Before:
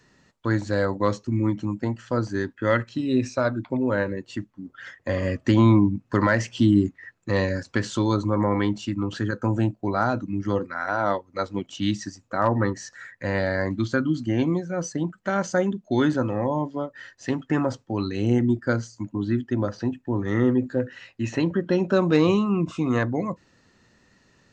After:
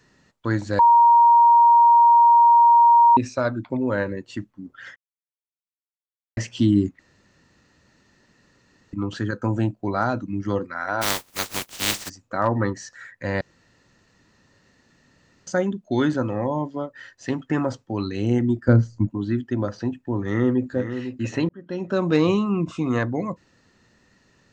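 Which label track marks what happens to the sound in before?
0.790000	3.170000	bleep 940 Hz -10 dBFS
4.960000	6.370000	mute
6.990000	8.930000	room tone
11.010000	12.080000	spectral contrast reduction exponent 0.17
13.410000	15.470000	room tone
18.680000	19.100000	tilt EQ -4 dB/octave
20.230000	20.760000	echo throw 500 ms, feedback 25%, level -9.5 dB
21.490000	22.130000	fade in

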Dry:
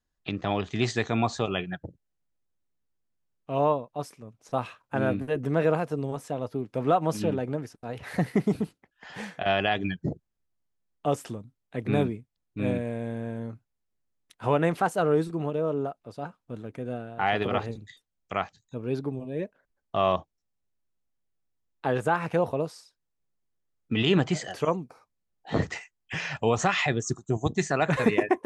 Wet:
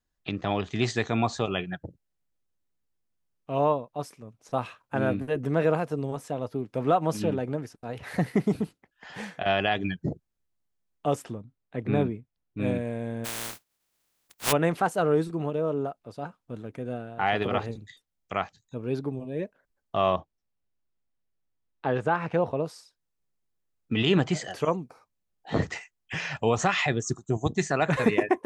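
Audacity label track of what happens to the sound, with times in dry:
11.220000	12.600000	low-pass 2.4 kHz 6 dB/octave
13.240000	14.510000	spectral contrast reduction exponent 0.16
20.100000	22.660000	distance through air 110 m

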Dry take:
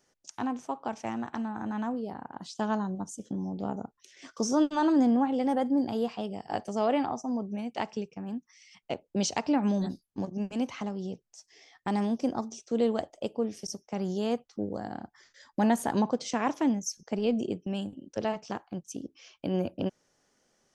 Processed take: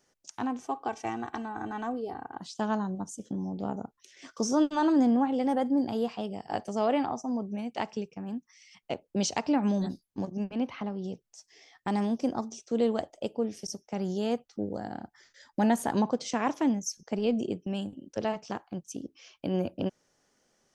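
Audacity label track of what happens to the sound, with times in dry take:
0.600000	2.400000	comb 2.6 ms
10.440000	11.040000	boxcar filter over 6 samples
13.130000	15.740000	band-stop 1.1 kHz, Q 8.9

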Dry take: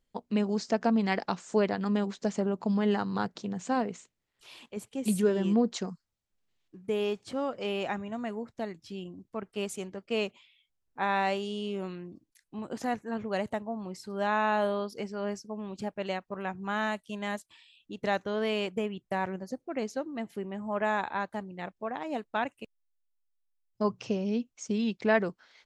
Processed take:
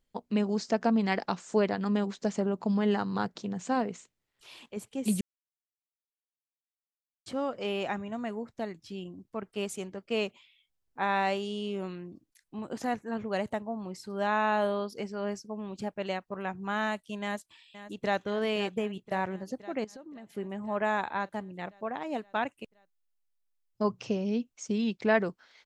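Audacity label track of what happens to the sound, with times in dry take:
5.210000	7.260000	mute
17.220000	18.220000	echo throw 520 ms, feedback 70%, level -13 dB
19.840000	20.300000	compression 20:1, threshold -42 dBFS

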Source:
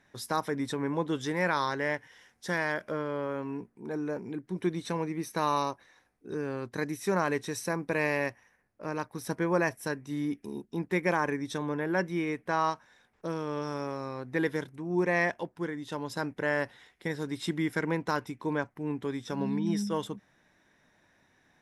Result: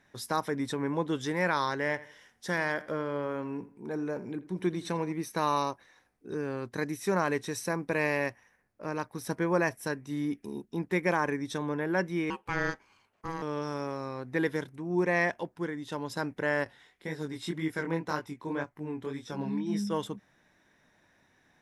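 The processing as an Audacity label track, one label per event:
1.780000	5.130000	filtered feedback delay 83 ms, feedback 36%, low-pass 3.9 kHz, level -17 dB
12.300000	13.420000	ring modulator 650 Hz
16.640000	19.850000	chorus 1.9 Hz, delay 19 ms, depth 5.3 ms

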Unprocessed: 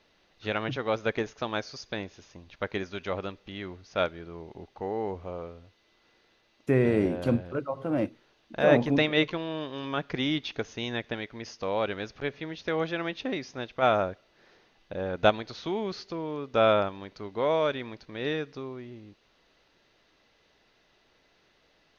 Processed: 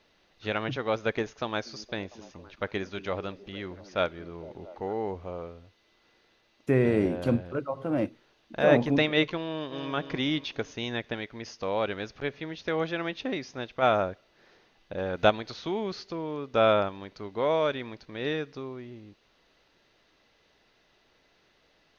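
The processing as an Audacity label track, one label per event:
1.430000	4.930000	repeats whose band climbs or falls 228 ms, band-pass from 260 Hz, each repeat 0.7 oct, level -12 dB
9.440000	9.900000	echo throw 270 ms, feedback 45%, level -8.5 dB
14.980000	15.540000	tape noise reduction on one side only encoder only

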